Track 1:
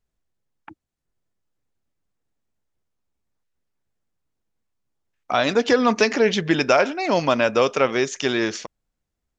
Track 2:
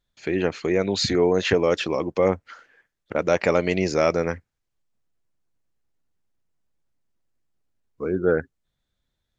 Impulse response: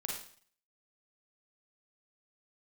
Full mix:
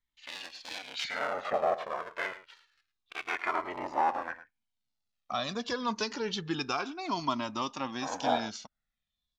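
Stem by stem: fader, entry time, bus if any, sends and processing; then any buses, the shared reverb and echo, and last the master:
-9.0 dB, 0.00 s, no send, no echo send, graphic EQ 250/500/1000/2000/4000 Hz +7/-10/+8/-8/+8 dB
+2.0 dB, 0.00 s, no send, echo send -14 dB, cycle switcher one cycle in 3, inverted; LFO band-pass sine 0.45 Hz 830–4400 Hz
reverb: off
echo: echo 0.107 s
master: cascading flanger falling 0.27 Hz

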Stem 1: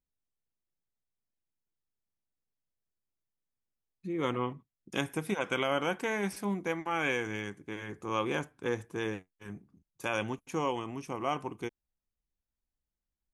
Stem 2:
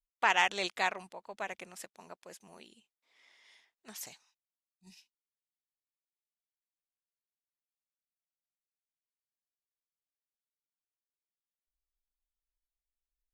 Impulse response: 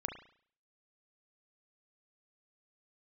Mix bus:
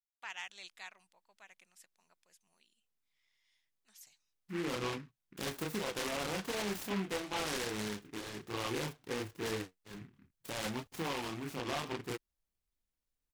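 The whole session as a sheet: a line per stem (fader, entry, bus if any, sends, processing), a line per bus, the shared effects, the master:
+0.5 dB, 0.45 s, no send, high shelf 9800 Hz +11 dB; chorus voices 4, 0.32 Hz, delay 30 ms, depth 4.3 ms; noise-modulated delay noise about 1700 Hz, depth 0.14 ms
-6.5 dB, 0.00 s, no send, passive tone stack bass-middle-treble 5-5-5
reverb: off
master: limiter -27.5 dBFS, peak gain reduction 8.5 dB

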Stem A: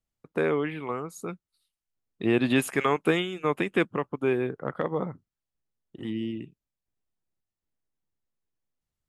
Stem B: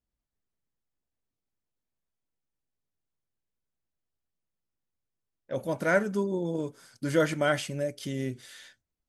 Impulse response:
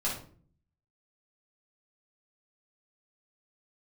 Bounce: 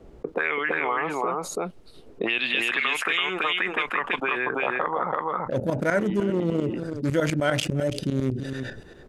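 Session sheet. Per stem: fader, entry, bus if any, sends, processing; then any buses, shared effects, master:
0.0 dB, 0.00 s, no send, echo send -3 dB, auto-wah 400–3000 Hz, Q 2.8, up, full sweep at -19.5 dBFS; three-band squash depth 40%
+1.5 dB, 0.00 s, no send, echo send -24 dB, Wiener smoothing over 41 samples; tremolo saw up 10 Hz, depth 85%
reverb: off
echo: echo 0.332 s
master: fast leveller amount 70%

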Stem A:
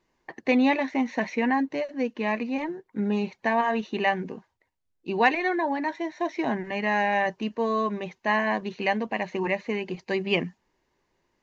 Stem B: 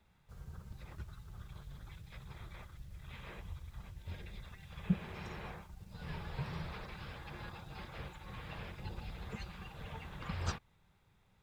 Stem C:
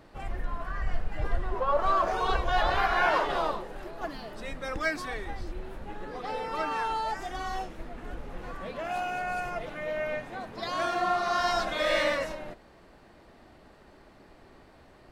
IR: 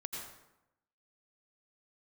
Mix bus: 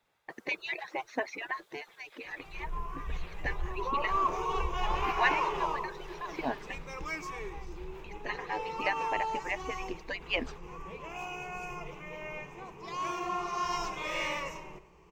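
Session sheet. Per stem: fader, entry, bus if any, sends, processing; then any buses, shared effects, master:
-4.0 dB, 0.00 s, muted 6.75–8.04, no send, median-filter separation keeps percussive
6.42 s -2 dB -> 6.92 s -9.5 dB, 0.00 s, send -12.5 dB, HPF 400 Hz 24 dB/oct
-8.5 dB, 2.25 s, send -11 dB, ripple EQ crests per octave 0.75, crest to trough 15 dB; attack slew limiter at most 100 dB/s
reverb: on, RT60 0.90 s, pre-delay 78 ms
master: dry

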